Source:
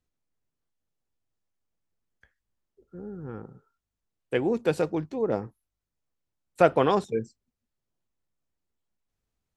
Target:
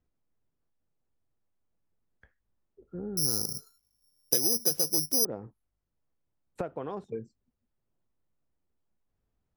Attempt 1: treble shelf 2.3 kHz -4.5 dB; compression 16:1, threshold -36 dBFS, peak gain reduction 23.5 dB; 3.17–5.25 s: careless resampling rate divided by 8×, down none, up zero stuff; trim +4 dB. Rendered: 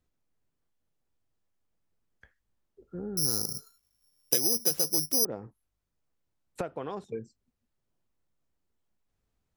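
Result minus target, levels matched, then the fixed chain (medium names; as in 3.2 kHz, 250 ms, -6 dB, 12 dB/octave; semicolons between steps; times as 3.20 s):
2 kHz band +3.5 dB
treble shelf 2.3 kHz -15 dB; compression 16:1, threshold -36 dBFS, peak gain reduction 22.5 dB; 3.17–5.25 s: careless resampling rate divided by 8×, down none, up zero stuff; trim +4 dB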